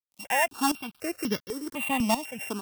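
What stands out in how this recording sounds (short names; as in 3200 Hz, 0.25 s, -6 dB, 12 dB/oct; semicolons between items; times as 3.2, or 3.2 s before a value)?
a buzz of ramps at a fixed pitch in blocks of 16 samples; tremolo saw up 1.4 Hz, depth 80%; a quantiser's noise floor 10-bit, dither none; notches that jump at a steady rate 4 Hz 430–2500 Hz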